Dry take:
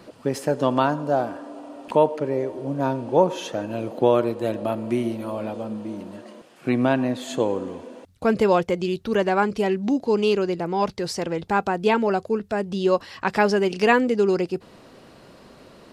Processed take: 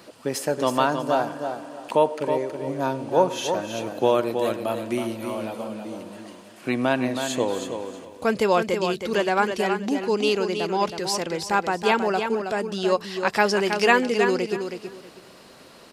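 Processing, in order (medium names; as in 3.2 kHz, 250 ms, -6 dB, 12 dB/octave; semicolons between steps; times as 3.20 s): tilt EQ +2 dB/octave; feedback delay 321 ms, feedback 22%, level -7 dB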